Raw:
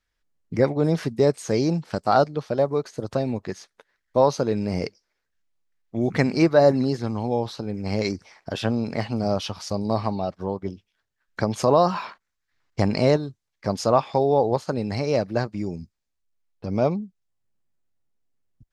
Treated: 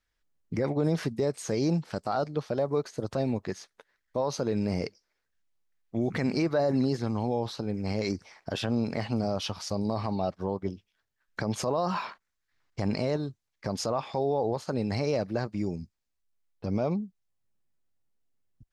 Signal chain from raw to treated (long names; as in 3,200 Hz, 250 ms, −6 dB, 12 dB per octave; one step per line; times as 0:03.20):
brickwall limiter −16 dBFS, peak gain reduction 10.5 dB
level −2 dB